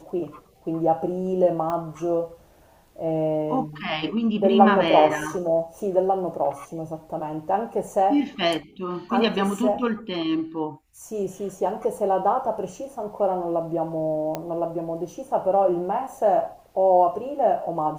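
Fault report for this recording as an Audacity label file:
1.700000	1.700000	click −17 dBFS
14.350000	14.350000	click −14 dBFS

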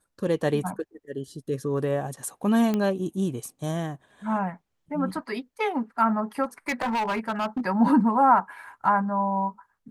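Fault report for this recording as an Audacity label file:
2.740000	2.740000	click −14 dBFS
6.430000	7.660000	clipping −23 dBFS

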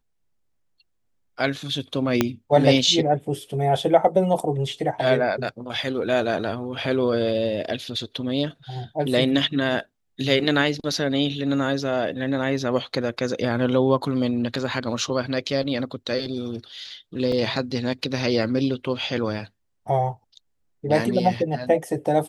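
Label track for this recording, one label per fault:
2.210000	2.210000	click −4 dBFS
17.320000	17.320000	drop-out 2.9 ms

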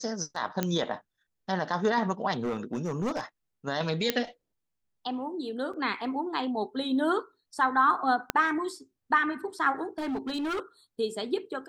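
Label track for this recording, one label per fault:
0.630000	0.630000	click −12 dBFS
2.330000	3.210000	clipping −25.5 dBFS
4.100000	4.100000	click −9 dBFS
5.730000	5.730000	drop-out 4.7 ms
8.300000	8.300000	click −10 dBFS
9.980000	10.600000	clipping −28 dBFS

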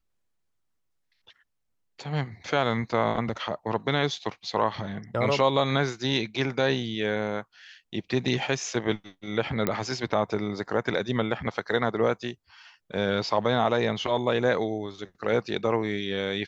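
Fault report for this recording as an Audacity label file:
9.670000	9.670000	click −11 dBFS

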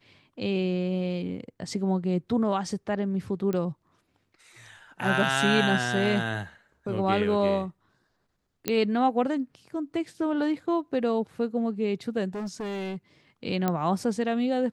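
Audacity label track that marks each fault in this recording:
3.530000	3.530000	click −19 dBFS
8.680000	8.680000	click −10 dBFS
12.350000	12.960000	clipping −30 dBFS
13.680000	13.680000	click −12 dBFS

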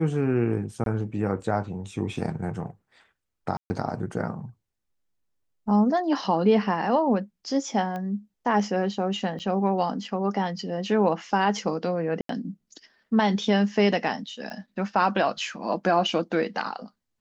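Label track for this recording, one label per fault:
0.840000	0.860000	drop-out 22 ms
3.570000	3.700000	drop-out 130 ms
7.960000	7.960000	click −22 dBFS
9.390000	9.400000	drop-out 7.7 ms
12.210000	12.290000	drop-out 83 ms
14.500000	14.500000	click −25 dBFS

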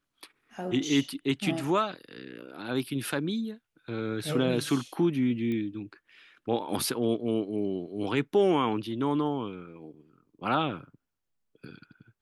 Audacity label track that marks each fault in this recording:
5.520000	5.520000	click −24 dBFS

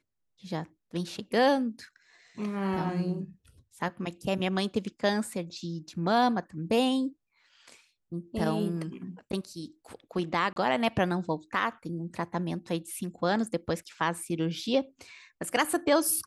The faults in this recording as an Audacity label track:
10.530000	10.560000	drop-out 32 ms

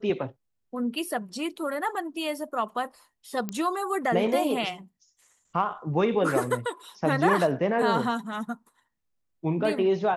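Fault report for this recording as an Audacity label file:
3.490000	3.490000	click −17 dBFS

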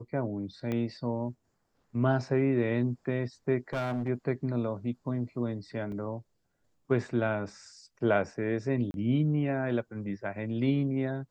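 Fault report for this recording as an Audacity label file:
0.720000	0.720000	click −21 dBFS
3.730000	4.090000	clipping −28 dBFS
5.920000	5.920000	drop-out 2.3 ms
8.910000	8.940000	drop-out 31 ms

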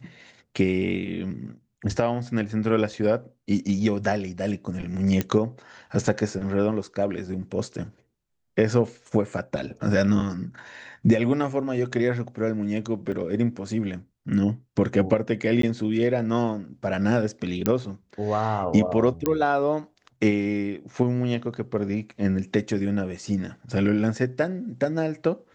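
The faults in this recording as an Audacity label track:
5.210000	5.210000	click −10 dBFS
13.120000	13.130000	drop-out 5.7 ms
15.620000	15.630000	drop-out 13 ms
17.660000	17.660000	click −8 dBFS
19.260000	19.260000	click −9 dBFS

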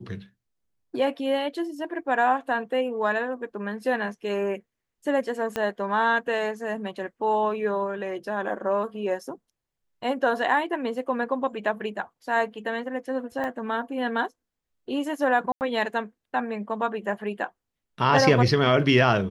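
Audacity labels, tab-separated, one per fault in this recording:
5.560000	5.560000	click −13 dBFS
13.440000	13.440000	click −20 dBFS
15.520000	15.610000	drop-out 89 ms

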